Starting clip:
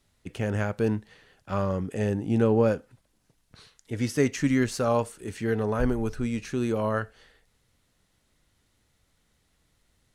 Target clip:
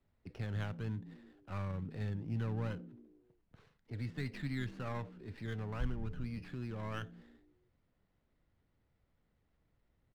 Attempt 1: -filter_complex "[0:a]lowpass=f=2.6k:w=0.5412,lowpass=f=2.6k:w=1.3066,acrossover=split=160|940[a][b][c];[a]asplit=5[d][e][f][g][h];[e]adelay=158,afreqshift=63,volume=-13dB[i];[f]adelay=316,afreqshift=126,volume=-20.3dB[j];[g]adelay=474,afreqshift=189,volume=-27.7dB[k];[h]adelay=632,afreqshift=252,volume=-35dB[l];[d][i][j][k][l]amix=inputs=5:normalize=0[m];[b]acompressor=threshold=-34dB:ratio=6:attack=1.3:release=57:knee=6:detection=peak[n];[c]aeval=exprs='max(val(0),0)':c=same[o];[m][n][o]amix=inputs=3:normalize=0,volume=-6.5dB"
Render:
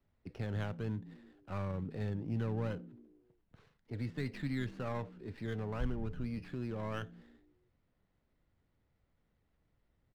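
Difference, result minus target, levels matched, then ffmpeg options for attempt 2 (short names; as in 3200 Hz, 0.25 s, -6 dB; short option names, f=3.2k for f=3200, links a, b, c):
compressor: peak gain reduction -6.5 dB
-filter_complex "[0:a]lowpass=f=2.6k:w=0.5412,lowpass=f=2.6k:w=1.3066,acrossover=split=160|940[a][b][c];[a]asplit=5[d][e][f][g][h];[e]adelay=158,afreqshift=63,volume=-13dB[i];[f]adelay=316,afreqshift=126,volume=-20.3dB[j];[g]adelay=474,afreqshift=189,volume=-27.7dB[k];[h]adelay=632,afreqshift=252,volume=-35dB[l];[d][i][j][k][l]amix=inputs=5:normalize=0[m];[b]acompressor=threshold=-42dB:ratio=6:attack=1.3:release=57:knee=6:detection=peak[n];[c]aeval=exprs='max(val(0),0)':c=same[o];[m][n][o]amix=inputs=3:normalize=0,volume=-6.5dB"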